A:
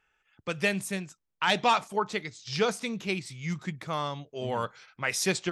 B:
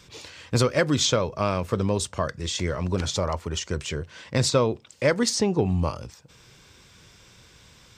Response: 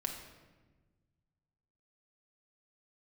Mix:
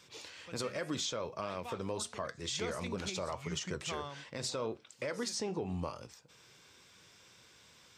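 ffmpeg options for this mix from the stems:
-filter_complex "[0:a]volume=-8.5dB,afade=type=in:start_time=2.47:duration=0.28:silence=0.266073,afade=type=out:start_time=3.94:duration=0.38:silence=0.223872[link_01];[1:a]highpass=frequency=290:poles=1,flanger=delay=7.8:depth=4.7:regen=-78:speed=0.82:shape=sinusoidal,volume=-2dB[link_02];[link_01][link_02]amix=inputs=2:normalize=0,alimiter=level_in=2.5dB:limit=-24dB:level=0:latency=1:release=167,volume=-2.5dB"

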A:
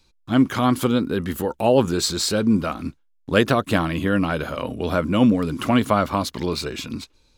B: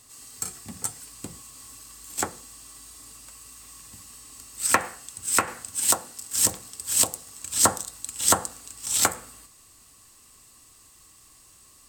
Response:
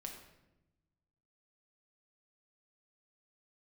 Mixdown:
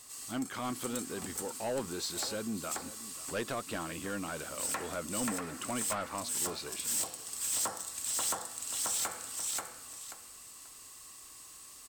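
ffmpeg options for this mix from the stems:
-filter_complex "[0:a]volume=-12.5dB,asplit=3[link_01][link_02][link_03];[link_02]volume=-18.5dB[link_04];[1:a]bandreject=frequency=165.7:width_type=h:width=4,bandreject=frequency=331.4:width_type=h:width=4,bandreject=frequency=497.1:width_type=h:width=4,bandreject=frequency=662.8:width_type=h:width=4,bandreject=frequency=828.5:width_type=h:width=4,bandreject=frequency=994.2:width_type=h:width=4,bandreject=frequency=1159.9:width_type=h:width=4,bandreject=frequency=1325.6:width_type=h:width=4,bandreject=frequency=1491.3:width_type=h:width=4,bandreject=frequency=1657:width_type=h:width=4,bandreject=frequency=1822.7:width_type=h:width=4,bandreject=frequency=1988.4:width_type=h:width=4,bandreject=frequency=2154.1:width_type=h:width=4,bandreject=frequency=2319.8:width_type=h:width=4,bandreject=frequency=2485.5:width_type=h:width=4,bandreject=frequency=2651.2:width_type=h:width=4,bandreject=frequency=2816.9:width_type=h:width=4,bandreject=frequency=2982.6:width_type=h:width=4,bandreject=frequency=3148.3:width_type=h:width=4,bandreject=frequency=3314:width_type=h:width=4,bandreject=frequency=3479.7:width_type=h:width=4,bandreject=frequency=3645.4:width_type=h:width=4,bandreject=frequency=3811.1:width_type=h:width=4,bandreject=frequency=3976.8:width_type=h:width=4,bandreject=frequency=4142.5:width_type=h:width=4,bandreject=frequency=4308.2:width_type=h:width=4,bandreject=frequency=4473.9:width_type=h:width=4,bandreject=frequency=4639.6:width_type=h:width=4,bandreject=frequency=4805.3:width_type=h:width=4,bandreject=frequency=4971:width_type=h:width=4,bandreject=frequency=5136.7:width_type=h:width=4,bandreject=frequency=5302.4:width_type=h:width=4,bandreject=frequency=5468.1:width_type=h:width=4,bandreject=frequency=5633.8:width_type=h:width=4,bandreject=frequency=5799.5:width_type=h:width=4,bandreject=frequency=5965.2:width_type=h:width=4,acompressor=threshold=-32dB:ratio=2.5,volume=1.5dB,asplit=2[link_05][link_06];[link_06]volume=-4dB[link_07];[link_03]apad=whole_len=524070[link_08];[link_05][link_08]sidechaincompress=threshold=-35dB:ratio=5:attack=16:release=708[link_09];[link_04][link_07]amix=inputs=2:normalize=0,aecho=0:1:535|1070|1605:1|0.21|0.0441[link_10];[link_01][link_09][link_10]amix=inputs=3:normalize=0,lowshelf=frequency=240:gain=-10.5,asoftclip=type=tanh:threshold=-28dB"

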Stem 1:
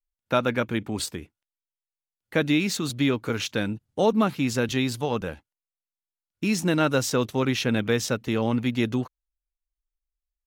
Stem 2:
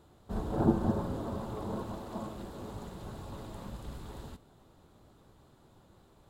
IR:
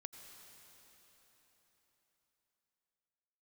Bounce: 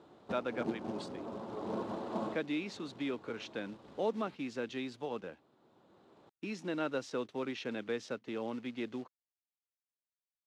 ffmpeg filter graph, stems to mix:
-filter_complex "[0:a]acrossover=split=240|3000[link_01][link_02][link_03];[link_01]acompressor=threshold=-30dB:ratio=4[link_04];[link_04][link_02][link_03]amix=inputs=3:normalize=0,volume=-14.5dB,asplit=2[link_05][link_06];[1:a]volume=1.5dB,asplit=2[link_07][link_08];[link_08]volume=-21.5dB[link_09];[link_06]apad=whole_len=277524[link_10];[link_07][link_10]sidechaincompress=threshold=-52dB:ratio=4:attack=16:release=1000[link_11];[2:a]atrim=start_sample=2205[link_12];[link_09][link_12]afir=irnorm=-1:irlink=0[link_13];[link_05][link_11][link_13]amix=inputs=3:normalize=0,lowshelf=frequency=460:gain=7.5,acrusher=bits=6:mode=log:mix=0:aa=0.000001,highpass=300,lowpass=4200"

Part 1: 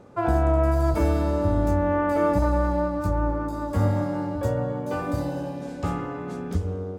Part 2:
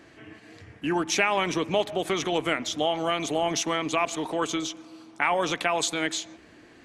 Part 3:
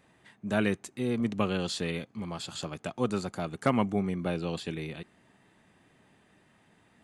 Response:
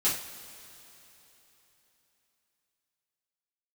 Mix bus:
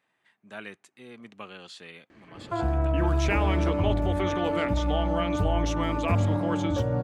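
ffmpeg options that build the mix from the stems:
-filter_complex "[0:a]alimiter=limit=-20.5dB:level=0:latency=1:release=364,adelay=2350,volume=1.5dB[link_01];[1:a]adelay=2100,volume=-5dB[link_02];[2:a]highpass=frequency=1400:poles=1,volume=-5dB[link_03];[link_01][link_02][link_03]amix=inputs=3:normalize=0,bass=frequency=250:gain=4,treble=frequency=4000:gain=-9"

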